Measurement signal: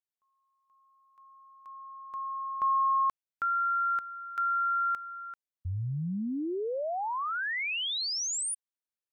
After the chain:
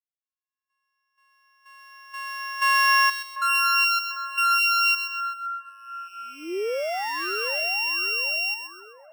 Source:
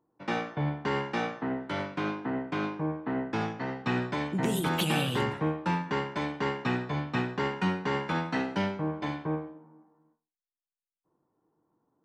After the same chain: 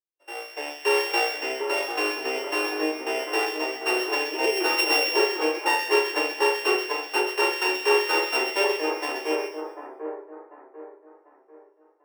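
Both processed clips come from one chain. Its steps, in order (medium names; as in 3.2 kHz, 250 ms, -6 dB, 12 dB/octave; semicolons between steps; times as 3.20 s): sorted samples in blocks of 16 samples; steep high-pass 350 Hz 48 dB/octave; level rider gain up to 12 dB; two-band feedback delay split 1.6 kHz, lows 744 ms, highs 129 ms, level -4.5 dB; spectral contrast expander 1.5:1; trim -6 dB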